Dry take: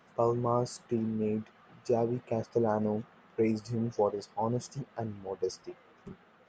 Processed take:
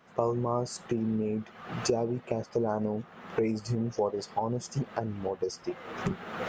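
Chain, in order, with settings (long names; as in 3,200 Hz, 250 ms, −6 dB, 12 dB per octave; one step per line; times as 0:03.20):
camcorder AGC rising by 49 dB per second
level −1 dB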